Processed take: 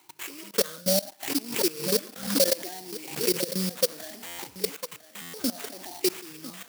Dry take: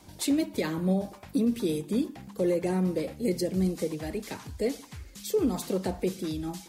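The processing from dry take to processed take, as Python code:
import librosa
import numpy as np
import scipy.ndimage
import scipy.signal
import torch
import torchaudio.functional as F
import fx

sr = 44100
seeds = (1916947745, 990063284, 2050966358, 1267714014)

y = fx.spec_ripple(x, sr, per_octave=0.72, drift_hz=0.66, depth_db=23)
y = fx.level_steps(y, sr, step_db=21)
y = scipy.signal.sosfilt(scipy.signal.butter(2, 120.0, 'highpass', fs=sr, output='sos'), y)
y = fx.peak_eq(y, sr, hz=530.0, db=3.5, octaves=2.4)
y = y + 10.0 ** (-14.0 / 20.0) * np.pad(y, (int(1002 * sr / 1000.0), 0))[:len(y)]
y = fx.sample_hold(y, sr, seeds[0], rate_hz=5100.0, jitter_pct=20)
y = fx.tilt_eq(y, sr, slope=3.5)
y = fx.buffer_glitch(y, sr, at_s=(4.26, 5.21), block=512, repeats=10)
y = fx.pre_swell(y, sr, db_per_s=100.0, at=(1.2, 3.7), fade=0.02)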